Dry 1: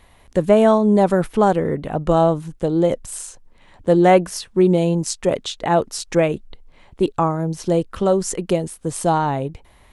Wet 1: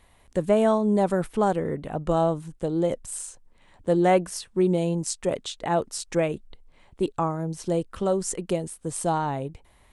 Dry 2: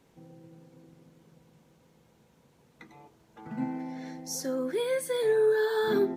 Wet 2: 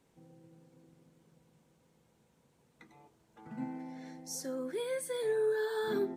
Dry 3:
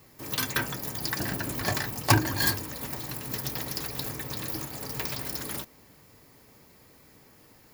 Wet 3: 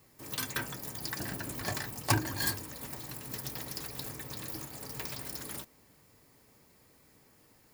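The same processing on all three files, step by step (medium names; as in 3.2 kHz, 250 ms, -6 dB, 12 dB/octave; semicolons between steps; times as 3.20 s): peaking EQ 8.5 kHz +5.5 dB 0.44 oct; trim -7 dB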